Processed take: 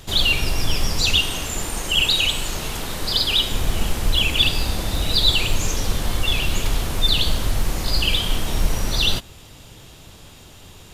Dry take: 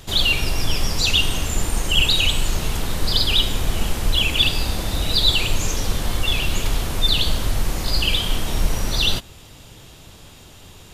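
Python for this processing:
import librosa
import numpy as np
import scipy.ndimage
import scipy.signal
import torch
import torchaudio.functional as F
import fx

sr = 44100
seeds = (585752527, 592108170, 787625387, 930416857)

y = fx.low_shelf(x, sr, hz=180.0, db=-8.0, at=(1.19, 3.52))
y = fx.quant_companded(y, sr, bits=8)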